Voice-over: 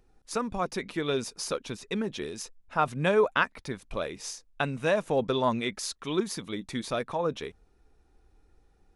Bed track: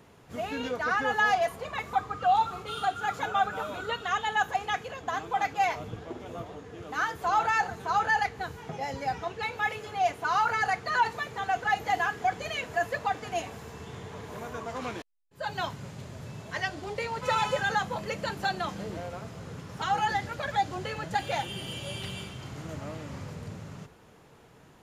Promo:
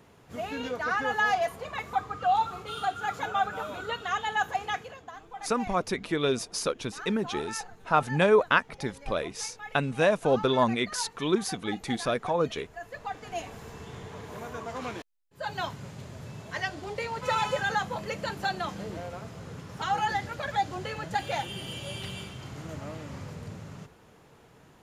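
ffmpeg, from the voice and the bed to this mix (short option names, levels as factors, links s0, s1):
-filter_complex "[0:a]adelay=5150,volume=1.33[s0];[1:a]volume=3.98,afade=t=out:st=4.7:d=0.43:silence=0.237137,afade=t=in:st=12.8:d=0.88:silence=0.223872[s1];[s0][s1]amix=inputs=2:normalize=0"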